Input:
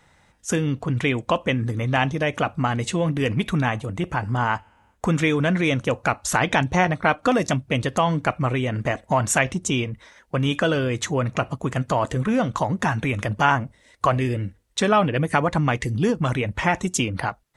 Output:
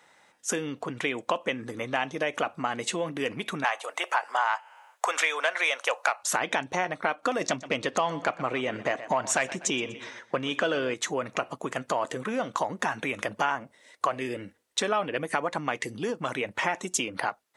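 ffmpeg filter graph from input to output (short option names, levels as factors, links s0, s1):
-filter_complex "[0:a]asettb=1/sr,asplit=3[s0][s1][s2];[s0]atrim=end=3.644[s3];[s1]atrim=start=3.64:end=6.23,asetpts=PTS-STARTPTS,afade=t=in:d=0.004:c=qsin,afade=t=out:st=2.586:d=0.004:c=qsin,highpass=f=620:w=0.5412,highpass=f=620:w=1.3066,acontrast=84[s4];[s2]atrim=start=6.226[s5];[s3][s4]acrossfade=d=0.004:c1=hsin:c2=qsin[s6];[s6][s5]acrossfade=d=0.004:c1=qsin:c2=hsin,asettb=1/sr,asplit=3[s7][s8][s9];[s7]atrim=end=7.414[s10];[s8]atrim=start=7.41:end=10.94,asetpts=PTS-STARTPTS,afade=t=in:d=0.004:c=qsin,afade=t=out:st=3.526:d=0.004:c=qsin,lowpass=6700,acontrast=66,aecho=1:1:122|244|366:0.126|0.0478|0.0182,atrim=end_sample=155673[s11];[s9]atrim=start=10.936[s12];[s10][s11]acrossfade=d=0.004:c1=hsin:c2=qsin[s13];[s13][s12]acrossfade=d=0.004:c1=qsin:c2=hsin,acompressor=threshold=0.0794:ratio=6,highpass=350"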